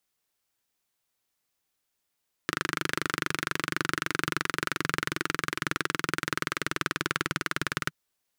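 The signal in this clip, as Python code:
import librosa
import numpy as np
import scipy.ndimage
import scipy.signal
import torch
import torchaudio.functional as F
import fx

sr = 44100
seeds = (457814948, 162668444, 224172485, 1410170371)

y = fx.engine_single_rev(sr, seeds[0], length_s=5.42, rpm=3000, resonances_hz=(160.0, 320.0, 1400.0), end_rpm=2300)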